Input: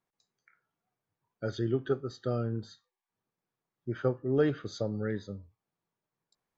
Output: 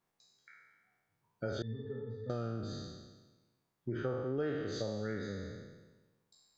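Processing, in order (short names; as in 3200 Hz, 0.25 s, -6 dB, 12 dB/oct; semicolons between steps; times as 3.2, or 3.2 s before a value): spectral trails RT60 1.22 s; 1.62–2.3 octave resonator A, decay 0.19 s; compressor 3:1, threshold -38 dBFS, peak gain reduction 13.5 dB; gain +1.5 dB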